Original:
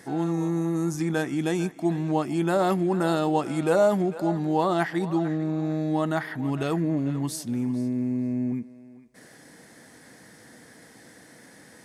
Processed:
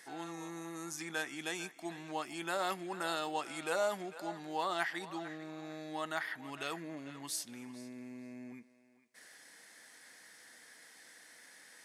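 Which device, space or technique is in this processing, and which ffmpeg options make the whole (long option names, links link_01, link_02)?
filter by subtraction: -filter_complex "[0:a]asplit=2[link_01][link_02];[link_02]lowpass=2400,volume=-1[link_03];[link_01][link_03]amix=inputs=2:normalize=0,volume=-4.5dB"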